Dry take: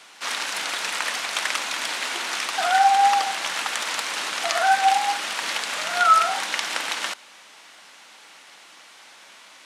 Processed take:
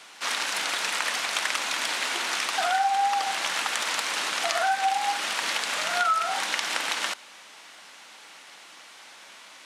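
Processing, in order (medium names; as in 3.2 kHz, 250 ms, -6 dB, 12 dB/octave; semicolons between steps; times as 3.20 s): compression 4:1, threshold -22 dBFS, peak gain reduction 10 dB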